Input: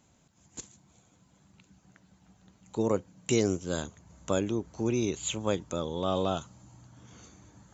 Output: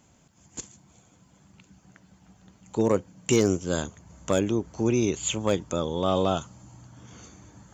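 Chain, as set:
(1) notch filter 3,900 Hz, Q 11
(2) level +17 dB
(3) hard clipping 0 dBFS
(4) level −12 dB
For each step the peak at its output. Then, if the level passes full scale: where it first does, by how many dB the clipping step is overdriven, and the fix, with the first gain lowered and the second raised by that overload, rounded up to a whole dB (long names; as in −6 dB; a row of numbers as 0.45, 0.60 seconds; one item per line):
−13.0, +4.0, 0.0, −12.0 dBFS
step 2, 4.0 dB
step 2 +13 dB, step 4 −8 dB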